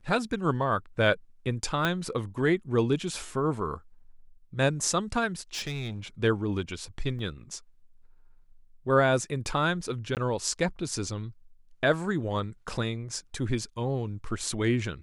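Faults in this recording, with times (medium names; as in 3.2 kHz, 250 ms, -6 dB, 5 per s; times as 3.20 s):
1.85 s: pop -12 dBFS
5.54–6.00 s: clipped -29.5 dBFS
7.19 s: dropout 2.6 ms
10.15–10.17 s: dropout 18 ms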